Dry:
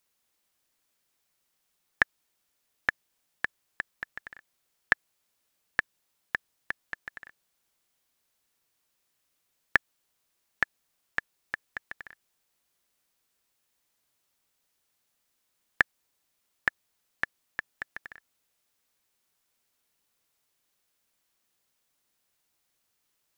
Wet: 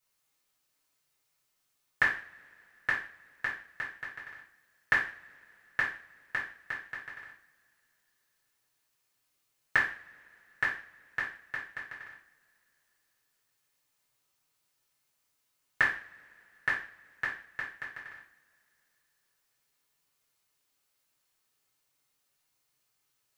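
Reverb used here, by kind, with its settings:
coupled-rooms reverb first 0.43 s, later 3.2 s, from −28 dB, DRR −8 dB
level −9 dB

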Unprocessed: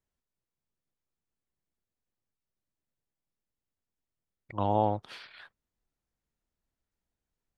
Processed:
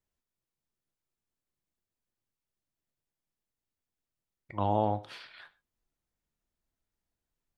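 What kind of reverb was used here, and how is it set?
reverb whose tail is shaped and stops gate 160 ms falling, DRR 10.5 dB
level −1 dB

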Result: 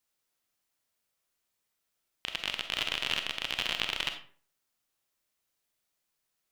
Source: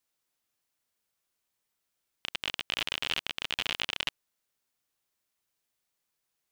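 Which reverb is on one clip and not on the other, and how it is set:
comb and all-pass reverb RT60 0.46 s, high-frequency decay 0.65×, pre-delay 5 ms, DRR 6 dB

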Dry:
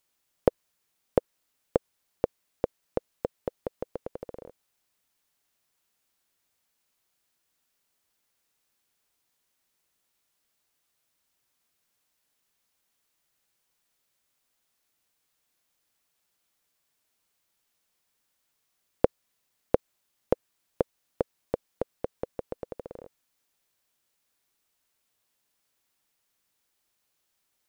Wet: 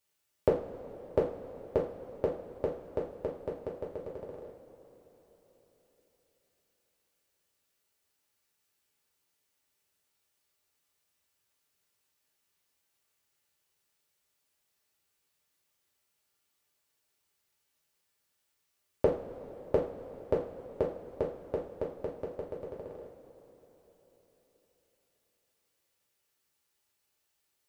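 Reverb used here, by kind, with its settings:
coupled-rooms reverb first 0.37 s, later 4.4 s, from −18 dB, DRR −4.5 dB
level −7.5 dB

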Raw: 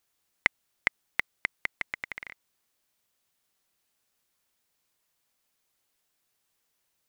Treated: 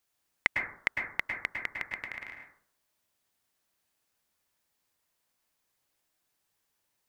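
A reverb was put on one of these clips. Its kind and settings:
dense smooth reverb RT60 0.57 s, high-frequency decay 0.25×, pre-delay 95 ms, DRR 1.5 dB
level −3 dB

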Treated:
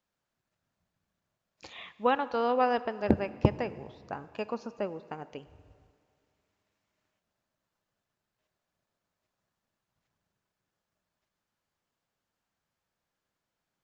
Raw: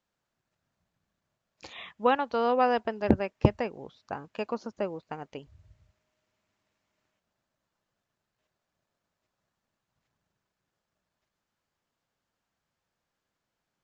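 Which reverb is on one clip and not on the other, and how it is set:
dense smooth reverb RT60 2.2 s, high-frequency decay 0.8×, DRR 15 dB
level −2 dB

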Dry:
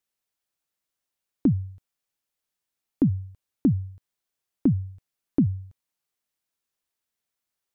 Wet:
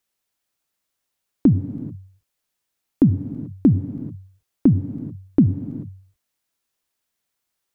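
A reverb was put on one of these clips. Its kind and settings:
reverb whose tail is shaped and stops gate 460 ms flat, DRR 11 dB
level +6 dB

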